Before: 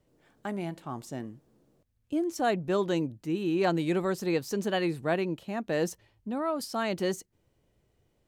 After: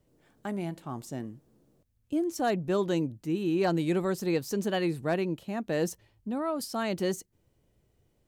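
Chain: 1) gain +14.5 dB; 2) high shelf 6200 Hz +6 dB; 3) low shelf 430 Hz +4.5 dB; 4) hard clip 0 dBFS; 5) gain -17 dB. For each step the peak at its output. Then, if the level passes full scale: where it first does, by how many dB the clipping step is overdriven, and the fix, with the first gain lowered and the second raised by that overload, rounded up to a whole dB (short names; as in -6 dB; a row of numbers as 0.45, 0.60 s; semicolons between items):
+1.0, +1.0, +3.0, 0.0, -17.0 dBFS; step 1, 3.0 dB; step 1 +11.5 dB, step 5 -14 dB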